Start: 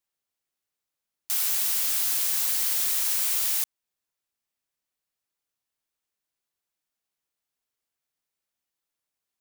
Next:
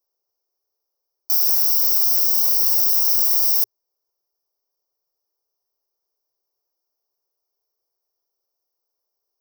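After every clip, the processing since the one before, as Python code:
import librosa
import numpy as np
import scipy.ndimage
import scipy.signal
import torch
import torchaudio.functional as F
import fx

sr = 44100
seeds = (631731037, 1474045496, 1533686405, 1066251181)

y = fx.curve_eq(x, sr, hz=(110.0, 150.0, 400.0, 1100.0, 2900.0, 5500.0, 7800.0, 15000.0), db=(0, -28, 12, 4, -28, 13, -16, 10))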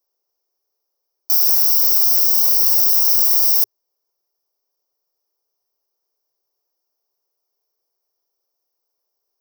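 y = scipy.signal.sosfilt(scipy.signal.butter(2, 110.0, 'highpass', fs=sr, output='sos'), x)
y = y * 10.0 ** (3.0 / 20.0)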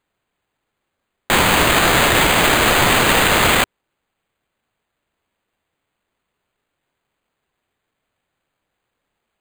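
y = np.repeat(x[::8], 8)[:len(x)]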